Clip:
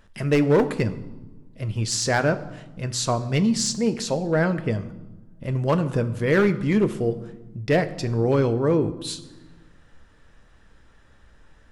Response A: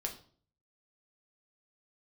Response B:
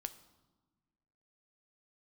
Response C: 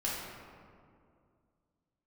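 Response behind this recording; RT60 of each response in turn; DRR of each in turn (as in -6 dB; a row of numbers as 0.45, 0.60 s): B; 0.50, 1.3, 2.3 s; 1.5, 10.0, -7.0 dB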